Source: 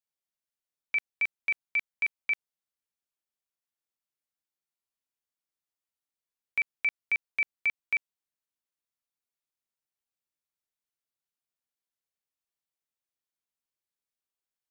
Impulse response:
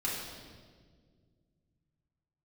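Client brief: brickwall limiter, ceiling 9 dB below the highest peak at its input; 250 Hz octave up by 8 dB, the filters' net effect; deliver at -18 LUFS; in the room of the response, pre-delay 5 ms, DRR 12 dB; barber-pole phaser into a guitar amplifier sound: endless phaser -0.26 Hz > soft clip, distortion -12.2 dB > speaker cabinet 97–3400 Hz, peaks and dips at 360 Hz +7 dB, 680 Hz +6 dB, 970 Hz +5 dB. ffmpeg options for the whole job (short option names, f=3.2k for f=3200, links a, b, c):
-filter_complex "[0:a]equalizer=f=250:t=o:g=7.5,alimiter=level_in=5.5dB:limit=-24dB:level=0:latency=1,volume=-5.5dB,asplit=2[a][b];[1:a]atrim=start_sample=2205,adelay=5[c];[b][c]afir=irnorm=-1:irlink=0,volume=-17.5dB[d];[a][d]amix=inputs=2:normalize=0,asplit=2[e][f];[f]afreqshift=-0.26[g];[e][g]amix=inputs=2:normalize=1,asoftclip=threshold=-37dB,highpass=97,equalizer=f=360:t=q:w=4:g=7,equalizer=f=680:t=q:w=4:g=6,equalizer=f=970:t=q:w=4:g=5,lowpass=f=3.4k:w=0.5412,lowpass=f=3.4k:w=1.3066,volume=28dB"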